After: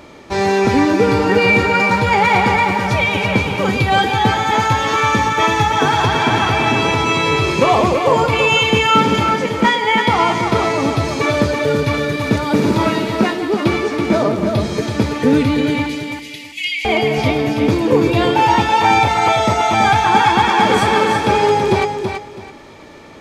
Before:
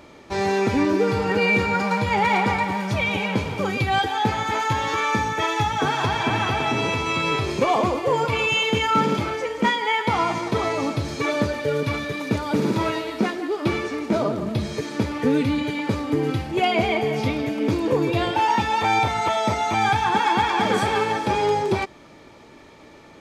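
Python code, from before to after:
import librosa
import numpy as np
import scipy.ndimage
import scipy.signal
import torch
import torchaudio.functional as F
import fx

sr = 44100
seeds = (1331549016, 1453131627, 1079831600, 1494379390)

p1 = fx.cheby1_highpass(x, sr, hz=2000.0, order=6, at=(15.86, 16.85))
p2 = p1 + fx.echo_feedback(p1, sr, ms=329, feedback_pct=24, wet_db=-6.0, dry=0)
y = p2 * librosa.db_to_amplitude(6.5)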